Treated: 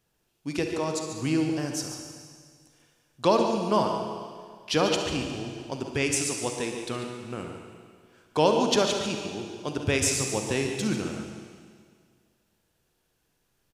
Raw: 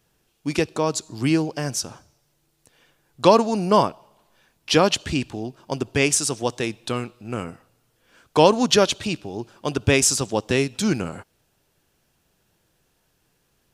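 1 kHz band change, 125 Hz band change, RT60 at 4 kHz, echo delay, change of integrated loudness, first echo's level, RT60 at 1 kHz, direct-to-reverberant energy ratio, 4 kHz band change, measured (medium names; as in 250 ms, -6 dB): -6.0 dB, -6.0 dB, 1.9 s, 144 ms, -6.0 dB, -10.5 dB, 1.9 s, 3.0 dB, -5.5 dB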